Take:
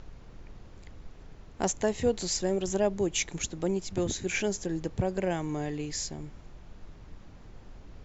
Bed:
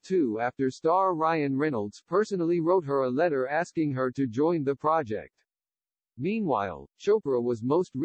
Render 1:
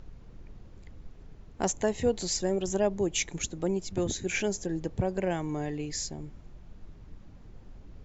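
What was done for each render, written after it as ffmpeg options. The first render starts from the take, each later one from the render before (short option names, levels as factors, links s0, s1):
-af "afftdn=nr=6:nf=-50"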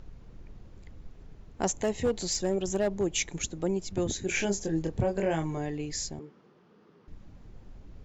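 -filter_complex "[0:a]asettb=1/sr,asplit=3[s0][s1][s2];[s0]atrim=end=1.814[s3];[s1]atrim=start=1.81:end=3.09,asetpts=PTS-STARTPTS,afade=t=in:d=0.004:c=qsin,afade=t=out:st=1.276:d=0.004:c=qsin,volume=10.6,asoftclip=hard,volume=0.0944[s4];[s2]atrim=start=3.086[s5];[s3][s4]acrossfade=d=0.004:c1=hsin:c2=qsin[s6];[s6][s5]acrossfade=d=0.004:c1=qsin:c2=hsin,asettb=1/sr,asplit=3[s7][s8][s9];[s7]atrim=end=4.264[s10];[s8]atrim=start=4.26:end=5.58,asetpts=PTS-STARTPTS,afade=t=in:d=0.004:c=qsin,afade=t=out:st=1.316:d=0.004:c=qsin,asplit=2[s11][s12];[s12]adelay=25,volume=0.668[s13];[s11][s13]amix=inputs=2:normalize=0,atrim=end_sample=58212[s14];[s9]atrim=start=5.576[s15];[s10][s14]acrossfade=d=0.004:c1=hsin:c2=qsin[s16];[s16][s15]acrossfade=d=0.004:c1=qsin:c2=hsin,asettb=1/sr,asplit=3[s17][s18][s19];[s17]atrim=end=6.194[s20];[s18]atrim=start=6.19:end=7.08,asetpts=PTS-STARTPTS,afade=t=in:d=0.004:c=qsin,afade=t=out:st=0.886:d=0.004:c=qsin,highpass=f=190:w=0.5412,highpass=f=190:w=1.3066,equalizer=f=270:t=q:w=4:g=-4,equalizer=f=440:t=q:w=4:g=8,equalizer=f=640:t=q:w=4:g=-6,equalizer=f=1200:t=q:w=4:g=5,equalizer=f=2300:t=q:w=4:g=-4,equalizer=f=3900:t=q:w=4:g=-5,lowpass=f=5000:w=0.5412,lowpass=f=5000:w=1.3066[s21];[s19]atrim=start=7.076[s22];[s20][s21]acrossfade=d=0.004:c1=hsin:c2=qsin[s23];[s23][s22]acrossfade=d=0.004:c1=qsin:c2=hsin"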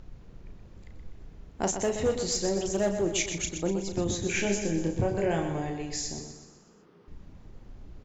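-filter_complex "[0:a]asplit=2[s0][s1];[s1]adelay=35,volume=0.398[s2];[s0][s2]amix=inputs=2:normalize=0,asplit=2[s3][s4];[s4]aecho=0:1:124|248|372|496|620|744:0.398|0.203|0.104|0.0528|0.0269|0.0137[s5];[s3][s5]amix=inputs=2:normalize=0"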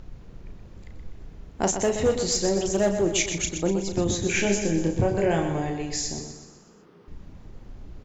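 -af "volume=1.68"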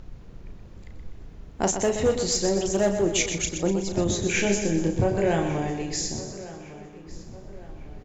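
-filter_complex "[0:a]asplit=2[s0][s1];[s1]adelay=1155,lowpass=f=3400:p=1,volume=0.15,asplit=2[s2][s3];[s3]adelay=1155,lowpass=f=3400:p=1,volume=0.45,asplit=2[s4][s5];[s5]adelay=1155,lowpass=f=3400:p=1,volume=0.45,asplit=2[s6][s7];[s7]adelay=1155,lowpass=f=3400:p=1,volume=0.45[s8];[s0][s2][s4][s6][s8]amix=inputs=5:normalize=0"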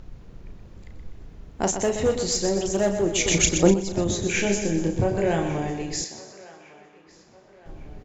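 -filter_complex "[0:a]asettb=1/sr,asplit=3[s0][s1][s2];[s0]atrim=end=6.044[s3];[s1]atrim=start=6.04:end=7.66,asetpts=PTS-STARTPTS,afade=t=in:d=0.004:c=qsin,afade=t=out:st=1.616:d=0.004:c=qsin,bandpass=f=1800:t=q:w=0.5[s4];[s2]atrim=start=7.656[s5];[s3][s4]acrossfade=d=0.004:c1=hsin:c2=qsin[s6];[s6][s5]acrossfade=d=0.004:c1=qsin:c2=hsin,asplit=3[s7][s8][s9];[s7]atrim=end=3.262[s10];[s8]atrim=start=3.258:end=3.742,asetpts=PTS-STARTPTS,volume=2.51[s11];[s9]atrim=start=3.738[s12];[s10][s11]acrossfade=d=0.004:c1=hsin:c2=hsin[s13];[s13][s12]acrossfade=d=0.004:c1=hsin:c2=hsin"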